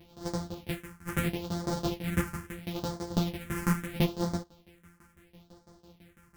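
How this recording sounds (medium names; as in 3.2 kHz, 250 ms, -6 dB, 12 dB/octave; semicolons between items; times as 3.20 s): a buzz of ramps at a fixed pitch in blocks of 256 samples; phasing stages 4, 0.75 Hz, lowest notch 600–2600 Hz; tremolo saw down 6 Hz, depth 95%; a shimmering, thickened sound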